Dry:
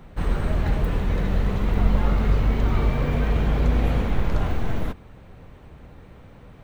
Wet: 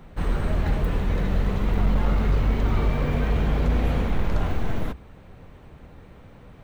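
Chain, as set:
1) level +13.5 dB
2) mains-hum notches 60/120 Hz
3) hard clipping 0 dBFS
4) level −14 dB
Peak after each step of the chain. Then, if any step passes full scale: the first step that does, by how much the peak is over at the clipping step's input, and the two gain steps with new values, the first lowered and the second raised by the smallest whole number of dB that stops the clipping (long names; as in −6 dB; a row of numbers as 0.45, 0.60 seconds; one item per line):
+7.0, +7.0, 0.0, −14.0 dBFS
step 1, 7.0 dB
step 1 +6.5 dB, step 4 −7 dB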